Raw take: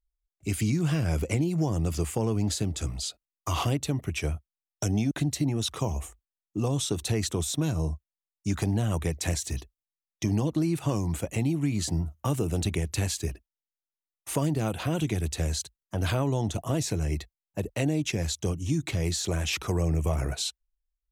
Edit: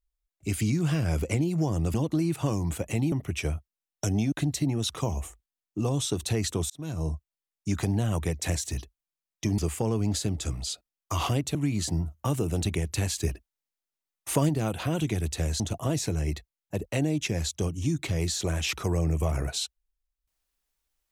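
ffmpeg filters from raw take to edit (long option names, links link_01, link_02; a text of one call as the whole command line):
ffmpeg -i in.wav -filter_complex "[0:a]asplit=9[link_01][link_02][link_03][link_04][link_05][link_06][link_07][link_08][link_09];[link_01]atrim=end=1.942[link_10];[link_02]atrim=start=10.368:end=11.552[link_11];[link_03]atrim=start=3.908:end=7.49,asetpts=PTS-STARTPTS,afade=type=out:start_time=3.578:duration=0.004:curve=hsin[link_12];[link_04]atrim=start=7.49:end=10.372,asetpts=PTS-STARTPTS,afade=type=in:duration=0.4[link_13];[link_05]atrim=start=1.938:end=3.912[link_14];[link_06]atrim=start=11.548:end=13.182[link_15];[link_07]atrim=start=13.178:end=14.492,asetpts=PTS-STARTPTS,volume=3dB[link_16];[link_08]atrim=start=14.488:end=15.602[link_17];[link_09]atrim=start=16.438[link_18];[link_10][link_11]acrossfade=duration=0.004:curve1=hsin:curve2=hsin[link_19];[link_12][link_13]concat=n=2:v=0:a=1[link_20];[link_19][link_20]acrossfade=duration=0.004:curve1=hsin:curve2=hsin[link_21];[link_21][link_14]acrossfade=duration=0.004:curve1=hsin:curve2=hsin[link_22];[link_22][link_15]acrossfade=duration=0.004:curve1=hsin:curve2=hsin[link_23];[link_23][link_16]acrossfade=duration=0.004:curve1=hsin:curve2=hsin[link_24];[link_24][link_17]acrossfade=duration=0.004:curve1=hsin:curve2=hsin[link_25];[link_25][link_18]acrossfade=duration=0.004:curve1=hsin:curve2=hsin" out.wav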